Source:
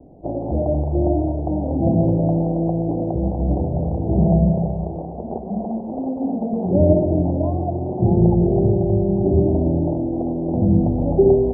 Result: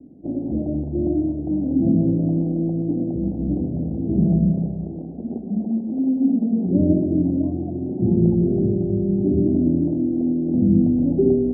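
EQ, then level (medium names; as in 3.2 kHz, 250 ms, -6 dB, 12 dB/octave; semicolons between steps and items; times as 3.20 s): band-pass filter 260 Hz, Q 3.1; tilt EQ -3 dB/octave; 0.0 dB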